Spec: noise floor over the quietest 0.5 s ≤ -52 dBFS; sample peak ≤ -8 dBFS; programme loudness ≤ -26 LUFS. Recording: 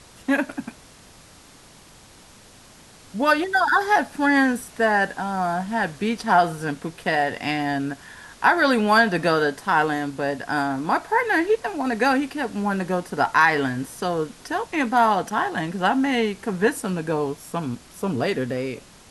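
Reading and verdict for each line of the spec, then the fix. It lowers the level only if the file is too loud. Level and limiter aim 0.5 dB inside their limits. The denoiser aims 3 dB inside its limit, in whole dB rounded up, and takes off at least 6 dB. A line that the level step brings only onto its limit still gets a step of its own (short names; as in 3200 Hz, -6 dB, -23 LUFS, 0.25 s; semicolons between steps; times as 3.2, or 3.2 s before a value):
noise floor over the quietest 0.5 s -49 dBFS: fail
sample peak -5.0 dBFS: fail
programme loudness -22.5 LUFS: fail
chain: gain -4 dB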